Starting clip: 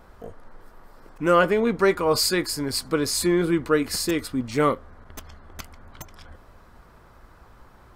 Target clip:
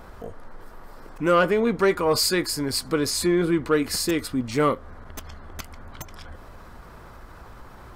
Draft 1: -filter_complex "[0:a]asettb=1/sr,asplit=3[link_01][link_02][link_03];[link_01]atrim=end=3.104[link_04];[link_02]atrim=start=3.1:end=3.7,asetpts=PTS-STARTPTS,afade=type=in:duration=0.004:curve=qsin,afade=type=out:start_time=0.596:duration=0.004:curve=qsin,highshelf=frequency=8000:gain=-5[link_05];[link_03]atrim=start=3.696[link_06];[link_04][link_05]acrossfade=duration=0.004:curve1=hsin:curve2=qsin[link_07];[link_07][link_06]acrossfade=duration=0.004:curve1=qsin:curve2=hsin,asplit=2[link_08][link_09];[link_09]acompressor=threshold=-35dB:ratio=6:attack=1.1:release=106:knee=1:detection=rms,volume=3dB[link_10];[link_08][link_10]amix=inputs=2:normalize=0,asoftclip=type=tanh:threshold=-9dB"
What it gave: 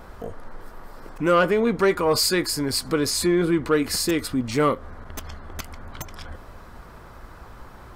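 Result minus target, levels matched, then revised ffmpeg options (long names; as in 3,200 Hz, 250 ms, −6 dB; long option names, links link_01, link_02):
downward compressor: peak gain reduction −8.5 dB
-filter_complex "[0:a]asettb=1/sr,asplit=3[link_01][link_02][link_03];[link_01]atrim=end=3.104[link_04];[link_02]atrim=start=3.1:end=3.7,asetpts=PTS-STARTPTS,afade=type=in:duration=0.004:curve=qsin,afade=type=out:start_time=0.596:duration=0.004:curve=qsin,highshelf=frequency=8000:gain=-5[link_05];[link_03]atrim=start=3.696[link_06];[link_04][link_05]acrossfade=duration=0.004:curve1=hsin:curve2=qsin[link_07];[link_07][link_06]acrossfade=duration=0.004:curve1=qsin:curve2=hsin,asplit=2[link_08][link_09];[link_09]acompressor=threshold=-45.5dB:ratio=6:attack=1.1:release=106:knee=1:detection=rms,volume=3dB[link_10];[link_08][link_10]amix=inputs=2:normalize=0,asoftclip=type=tanh:threshold=-9dB"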